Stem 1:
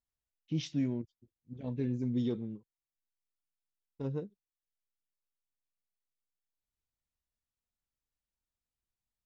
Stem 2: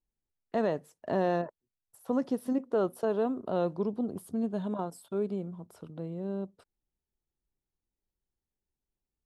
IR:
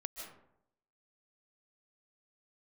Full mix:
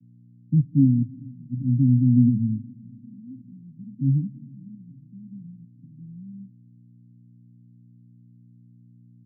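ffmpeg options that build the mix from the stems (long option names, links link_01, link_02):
-filter_complex "[0:a]dynaudnorm=framelen=120:gausssize=7:maxgain=8dB,volume=0.5dB,asplit=4[link_01][link_02][link_03][link_04];[link_02]volume=-12.5dB[link_05];[link_03]volume=-23.5dB[link_06];[1:a]acompressor=threshold=-30dB:ratio=6,aeval=exprs='val(0)+0.00251*(sin(2*PI*60*n/s)+sin(2*PI*2*60*n/s)/2+sin(2*PI*3*60*n/s)/3+sin(2*PI*4*60*n/s)/4+sin(2*PI*5*60*n/s)/5)':channel_layout=same,volume=-8dB[link_07];[link_04]apad=whole_len=408355[link_08];[link_07][link_08]sidechaincompress=threshold=-40dB:ratio=8:attack=16:release=534[link_09];[2:a]atrim=start_sample=2205[link_10];[link_05][link_10]afir=irnorm=-1:irlink=0[link_11];[link_06]aecho=0:1:434|868|1302|1736|2170|2604|3038|3472:1|0.54|0.292|0.157|0.085|0.0459|0.0248|0.0134[link_12];[link_01][link_09][link_11][link_12]amix=inputs=4:normalize=0,aemphasis=mode=reproduction:type=bsi,aeval=exprs='val(0)+0.00355*(sin(2*PI*60*n/s)+sin(2*PI*2*60*n/s)/2+sin(2*PI*3*60*n/s)/3+sin(2*PI*4*60*n/s)/4+sin(2*PI*5*60*n/s)/5)':channel_layout=same,asuperpass=centerf=170:order=20:qfactor=0.9"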